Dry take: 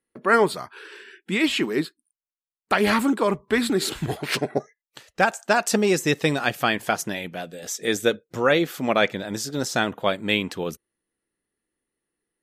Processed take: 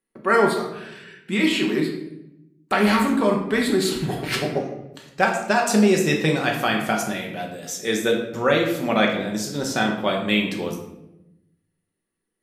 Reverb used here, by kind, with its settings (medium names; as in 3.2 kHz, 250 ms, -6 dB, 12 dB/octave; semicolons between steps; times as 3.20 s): simulated room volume 280 m³, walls mixed, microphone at 1.1 m; trim -2 dB